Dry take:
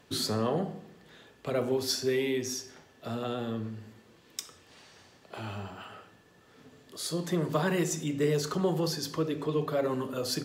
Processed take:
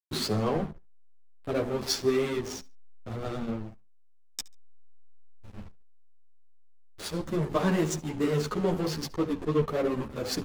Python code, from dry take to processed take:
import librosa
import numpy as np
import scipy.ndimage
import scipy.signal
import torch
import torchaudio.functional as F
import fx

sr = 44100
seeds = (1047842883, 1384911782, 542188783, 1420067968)

y = fx.spec_box(x, sr, start_s=3.92, length_s=1.61, low_hz=230.0, high_hz=1700.0, gain_db=-17)
y = fx.backlash(y, sr, play_db=-28.0)
y = fx.echo_feedback(y, sr, ms=70, feedback_pct=24, wet_db=-23.5)
y = fx.ensemble(y, sr)
y = y * 10.0 ** (6.5 / 20.0)